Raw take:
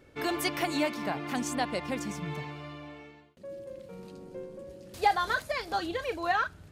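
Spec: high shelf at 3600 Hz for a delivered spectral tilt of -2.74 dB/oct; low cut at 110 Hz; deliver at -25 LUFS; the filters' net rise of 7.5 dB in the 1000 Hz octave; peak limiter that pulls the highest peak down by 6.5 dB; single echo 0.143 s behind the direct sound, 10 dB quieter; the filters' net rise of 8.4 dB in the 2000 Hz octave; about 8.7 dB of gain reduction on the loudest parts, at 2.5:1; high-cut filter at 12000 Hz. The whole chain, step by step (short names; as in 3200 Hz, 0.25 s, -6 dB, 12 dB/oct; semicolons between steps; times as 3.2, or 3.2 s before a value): HPF 110 Hz; LPF 12000 Hz; bell 1000 Hz +8.5 dB; bell 2000 Hz +9 dB; high shelf 3600 Hz -5.5 dB; compressor 2.5:1, threshold -25 dBFS; limiter -20 dBFS; echo 0.143 s -10 dB; gain +6.5 dB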